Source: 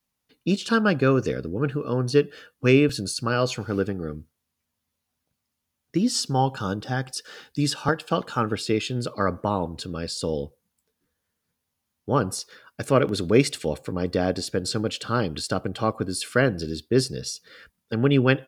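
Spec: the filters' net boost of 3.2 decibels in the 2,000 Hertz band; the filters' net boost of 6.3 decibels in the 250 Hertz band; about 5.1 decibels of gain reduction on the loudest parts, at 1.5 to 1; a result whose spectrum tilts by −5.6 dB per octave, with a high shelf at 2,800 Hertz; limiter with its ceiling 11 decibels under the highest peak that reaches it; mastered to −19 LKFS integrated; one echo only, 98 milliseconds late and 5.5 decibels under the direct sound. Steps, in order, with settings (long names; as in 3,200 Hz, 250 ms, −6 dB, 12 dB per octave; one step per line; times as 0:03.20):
parametric band 250 Hz +7.5 dB
parametric band 2,000 Hz +7.5 dB
high-shelf EQ 2,800 Hz −7.5 dB
downward compressor 1.5 to 1, threshold −22 dBFS
brickwall limiter −16 dBFS
single-tap delay 98 ms −5.5 dB
level +8.5 dB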